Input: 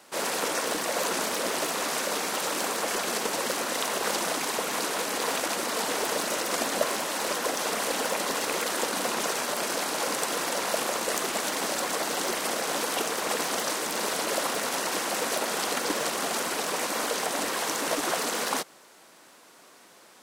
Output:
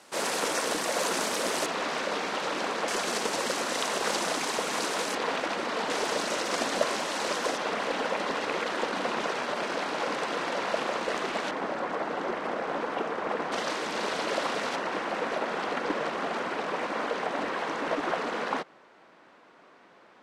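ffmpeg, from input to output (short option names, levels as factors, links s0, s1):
-af "asetnsamples=n=441:p=0,asendcmd='1.66 lowpass f 3800;2.88 lowpass f 7700;5.15 lowpass f 3400;5.9 lowpass f 6100;7.57 lowpass f 3200;11.51 lowpass f 1700;13.52 lowpass f 3900;14.76 lowpass f 2300',lowpass=9900"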